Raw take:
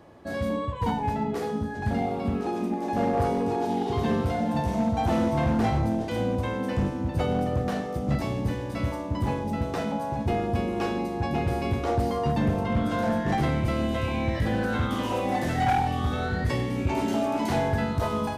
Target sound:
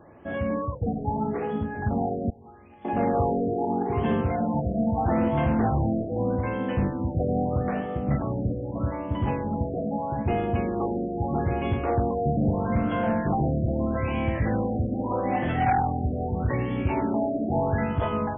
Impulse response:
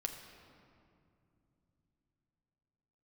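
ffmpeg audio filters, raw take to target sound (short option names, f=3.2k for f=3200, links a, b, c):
-filter_complex "[0:a]asettb=1/sr,asplit=3[a][b][c];[a]atrim=end=2.304[d];[b]atrim=start=2.3:end=2.85,asetpts=PTS-STARTPTS,afade=t=in:d=0.004:c=qsin,afade=t=out:st=0.546:d=0.004:c=qsin,aderivative[e];[c]atrim=start=2.846[f];[d][e]acrossfade=d=0.004:c1=hsin:c2=qsin[g];[g][f]acrossfade=d=0.004:c1=qsin:c2=hsin,asplit=2[h][i];[1:a]atrim=start_sample=2205[j];[i][j]afir=irnorm=-1:irlink=0,volume=-19dB[k];[h][k]amix=inputs=2:normalize=0,afftfilt=real='re*lt(b*sr/1024,730*pow(3500/730,0.5+0.5*sin(2*PI*0.79*pts/sr)))':imag='im*lt(b*sr/1024,730*pow(3500/730,0.5+0.5*sin(2*PI*0.79*pts/sr)))':win_size=1024:overlap=0.75"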